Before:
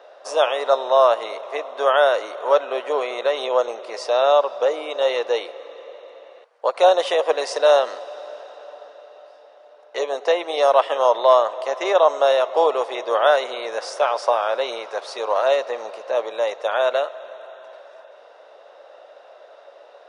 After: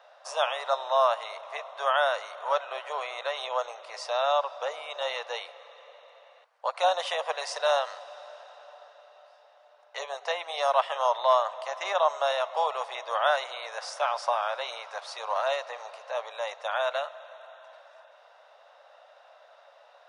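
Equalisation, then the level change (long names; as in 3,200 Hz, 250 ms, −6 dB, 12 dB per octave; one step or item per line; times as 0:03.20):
high-pass filter 690 Hz 24 dB per octave
−5.0 dB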